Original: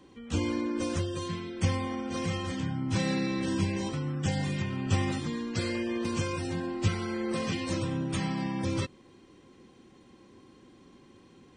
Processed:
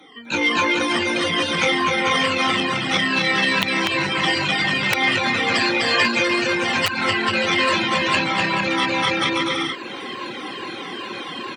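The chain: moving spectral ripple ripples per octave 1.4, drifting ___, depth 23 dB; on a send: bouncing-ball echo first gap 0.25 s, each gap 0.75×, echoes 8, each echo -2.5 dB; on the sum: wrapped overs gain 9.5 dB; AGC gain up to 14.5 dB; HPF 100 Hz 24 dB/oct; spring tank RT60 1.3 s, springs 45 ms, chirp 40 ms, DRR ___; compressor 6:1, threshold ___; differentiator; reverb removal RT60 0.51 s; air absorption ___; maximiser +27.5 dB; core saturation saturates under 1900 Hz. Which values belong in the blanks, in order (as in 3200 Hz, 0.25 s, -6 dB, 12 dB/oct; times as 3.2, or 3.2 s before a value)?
-2.4 Hz, 12.5 dB, -18 dBFS, 450 m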